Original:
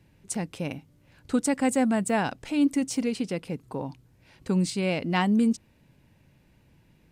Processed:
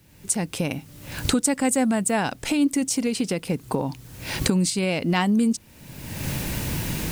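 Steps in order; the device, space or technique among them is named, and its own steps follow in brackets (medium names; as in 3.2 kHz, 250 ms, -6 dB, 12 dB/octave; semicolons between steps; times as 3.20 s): treble shelf 5.6 kHz +10.5 dB; cheap recorder with automatic gain (white noise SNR 40 dB; recorder AGC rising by 38 dB/s); trim +1.5 dB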